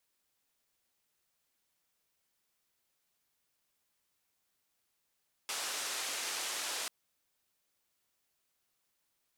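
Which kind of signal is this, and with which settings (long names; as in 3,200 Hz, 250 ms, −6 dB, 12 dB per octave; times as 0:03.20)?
band-limited noise 450–8,400 Hz, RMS −38 dBFS 1.39 s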